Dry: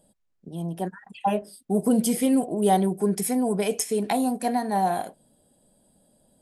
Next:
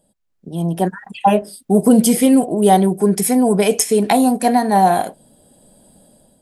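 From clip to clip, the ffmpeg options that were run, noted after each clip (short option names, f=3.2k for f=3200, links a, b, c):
-af "dynaudnorm=f=200:g=5:m=13dB"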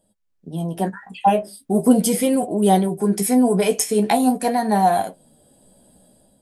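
-af "flanger=delay=9.5:depth=6.9:regen=33:speed=0.42:shape=sinusoidal"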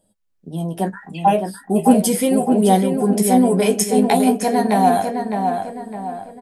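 -filter_complex "[0:a]asplit=2[a][b];[b]adelay=609,lowpass=f=2.8k:p=1,volume=-5dB,asplit=2[c][d];[d]adelay=609,lowpass=f=2.8k:p=1,volume=0.42,asplit=2[e][f];[f]adelay=609,lowpass=f=2.8k:p=1,volume=0.42,asplit=2[g][h];[h]adelay=609,lowpass=f=2.8k:p=1,volume=0.42,asplit=2[i][j];[j]adelay=609,lowpass=f=2.8k:p=1,volume=0.42[k];[a][c][e][g][i][k]amix=inputs=6:normalize=0,volume=1dB"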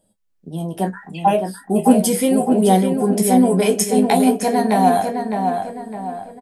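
-filter_complex "[0:a]asplit=2[a][b];[b]adelay=27,volume=-13dB[c];[a][c]amix=inputs=2:normalize=0"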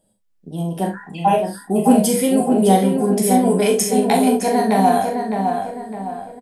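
-af "aecho=1:1:41|66:0.501|0.316,volume=-1dB"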